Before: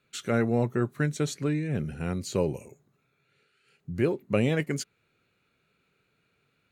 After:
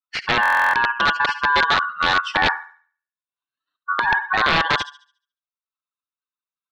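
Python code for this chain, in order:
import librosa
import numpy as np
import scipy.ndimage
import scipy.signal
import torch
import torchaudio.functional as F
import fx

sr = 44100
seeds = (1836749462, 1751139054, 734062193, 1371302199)

p1 = fx.bin_expand(x, sr, power=2.0)
p2 = fx.dynamic_eq(p1, sr, hz=360.0, q=1.9, threshold_db=-45.0, ratio=4.0, max_db=7)
p3 = p2 * np.sin(2.0 * np.pi * 1300.0 * np.arange(len(p2)) / sr)
p4 = p3 + fx.echo_thinned(p3, sr, ms=71, feedback_pct=39, hz=770.0, wet_db=-9.5, dry=0)
p5 = fx.transient(p4, sr, attack_db=3, sustain_db=-5)
p6 = scipy.signal.sosfilt(scipy.signal.butter(2, 220.0, 'highpass', fs=sr, output='sos'), p5)
p7 = fx.fold_sine(p6, sr, drive_db=8, ceiling_db=-9.5)
p8 = p6 + F.gain(torch.from_numpy(p7), -6.5).numpy()
p9 = fx.over_compress(p8, sr, threshold_db=-24.0, ratio=-1.0)
p10 = (np.mod(10.0 ** (17.0 / 20.0) * p9 + 1.0, 2.0) - 1.0) / 10.0 ** (17.0 / 20.0)
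p11 = scipy.signal.sosfilt(scipy.signal.butter(4, 3800.0, 'lowpass', fs=sr, output='sos'), p10)
p12 = fx.buffer_glitch(p11, sr, at_s=(0.41,), block=1024, repeats=13)
y = F.gain(torch.from_numpy(p12), 8.5).numpy()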